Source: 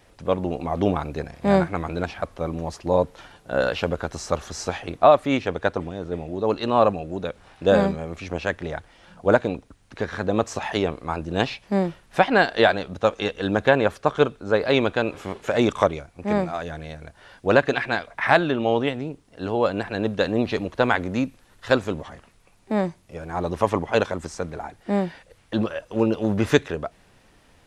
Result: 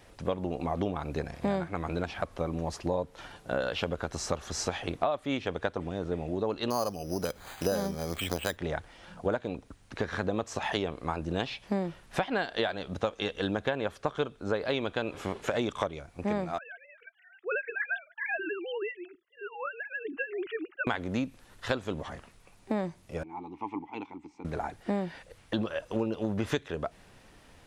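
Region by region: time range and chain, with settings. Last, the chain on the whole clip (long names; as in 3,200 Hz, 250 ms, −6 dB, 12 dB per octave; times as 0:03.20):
0:06.70–0:08.57: bad sample-rate conversion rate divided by 8×, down filtered, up hold + one half of a high-frequency compander encoder only
0:16.58–0:20.87: three sine waves on the formant tracks + flat-topped bell 710 Hz −15.5 dB 1.3 octaves + flanger whose copies keep moving one way falling 1.7 Hz
0:23.23–0:24.45: formant filter u + dynamic equaliser 340 Hz, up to −4 dB, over −43 dBFS, Q 0.77
whole clip: dynamic equaliser 3,300 Hz, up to +6 dB, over −48 dBFS, Q 5.9; downward compressor 6 to 1, threshold −27 dBFS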